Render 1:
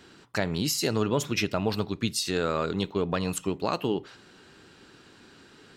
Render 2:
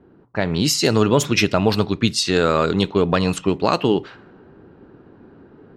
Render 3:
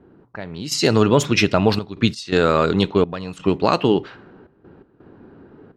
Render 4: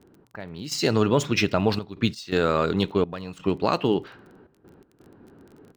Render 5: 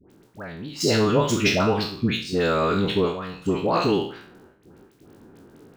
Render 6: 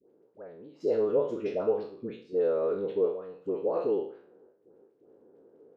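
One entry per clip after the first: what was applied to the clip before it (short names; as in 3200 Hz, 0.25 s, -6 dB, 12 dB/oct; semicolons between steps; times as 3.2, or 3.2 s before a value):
AGC gain up to 5.5 dB; low-pass opened by the level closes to 640 Hz, open at -17 dBFS; gain +4.5 dB
high shelf 9400 Hz -10 dB; step gate "xx..xxxxxx.x.xx" 84 bpm -12 dB; gain +1 dB
median filter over 3 samples; crackle 23/s -35 dBFS; gain -5.5 dB
spectral trails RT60 0.49 s; dispersion highs, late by 90 ms, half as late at 1000 Hz
band-pass 480 Hz, Q 4.3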